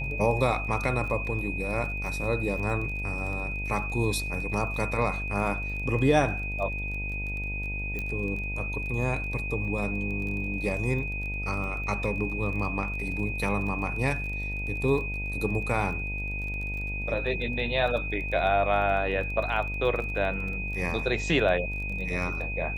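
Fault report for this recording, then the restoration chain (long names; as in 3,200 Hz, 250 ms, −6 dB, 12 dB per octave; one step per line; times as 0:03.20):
mains buzz 50 Hz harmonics 19 −34 dBFS
surface crackle 23 per second −35 dBFS
whistle 2,500 Hz −33 dBFS
0:07.99: click −20 dBFS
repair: click removal
hum removal 50 Hz, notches 19
notch filter 2,500 Hz, Q 30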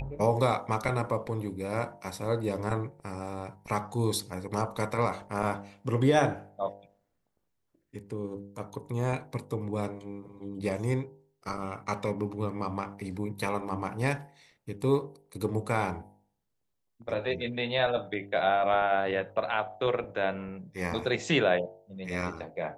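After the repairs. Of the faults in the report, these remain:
0:07.99: click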